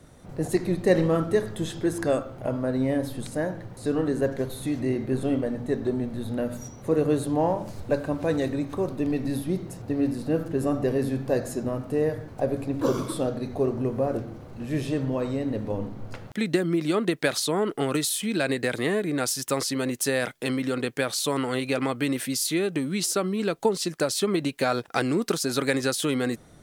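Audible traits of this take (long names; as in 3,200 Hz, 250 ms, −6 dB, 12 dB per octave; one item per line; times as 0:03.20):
background noise floor −45 dBFS
spectral slope −5.0 dB per octave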